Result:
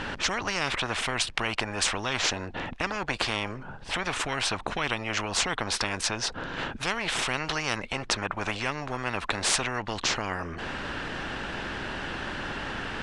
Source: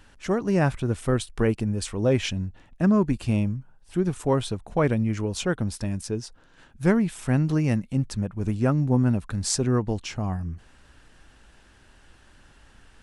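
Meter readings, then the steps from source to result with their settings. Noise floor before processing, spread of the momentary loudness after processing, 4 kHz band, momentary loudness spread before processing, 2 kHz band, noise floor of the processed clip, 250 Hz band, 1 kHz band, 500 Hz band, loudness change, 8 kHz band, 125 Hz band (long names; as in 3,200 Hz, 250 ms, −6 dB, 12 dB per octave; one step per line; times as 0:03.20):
−56 dBFS, 7 LU, +9.0 dB, 9 LU, +8.5 dB, −42 dBFS, −12.5 dB, +4.0 dB, −7.5 dB, −4.0 dB, +4.0 dB, −13.5 dB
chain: low-pass filter 3,500 Hz 12 dB per octave
in parallel at 0 dB: downward compressor, threshold −33 dBFS, peak gain reduction 17 dB
on the sum: every bin compressed towards the loudest bin 10 to 1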